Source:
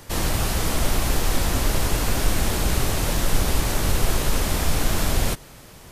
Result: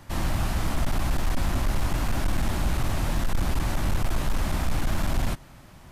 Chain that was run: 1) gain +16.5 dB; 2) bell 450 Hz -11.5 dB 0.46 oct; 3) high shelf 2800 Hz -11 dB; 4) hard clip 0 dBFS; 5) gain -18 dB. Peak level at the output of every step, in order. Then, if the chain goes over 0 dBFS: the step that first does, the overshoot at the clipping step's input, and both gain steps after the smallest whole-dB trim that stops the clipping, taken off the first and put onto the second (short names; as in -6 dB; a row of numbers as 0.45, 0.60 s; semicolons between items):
+10.0, +9.5, +9.0, 0.0, -18.0 dBFS; step 1, 9.0 dB; step 1 +7.5 dB, step 5 -9 dB